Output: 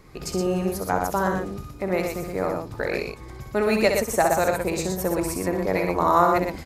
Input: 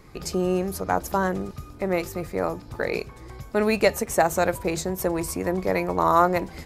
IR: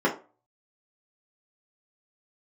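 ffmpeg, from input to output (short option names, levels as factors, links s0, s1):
-af "aecho=1:1:64.14|119.5:0.501|0.562,volume=0.891"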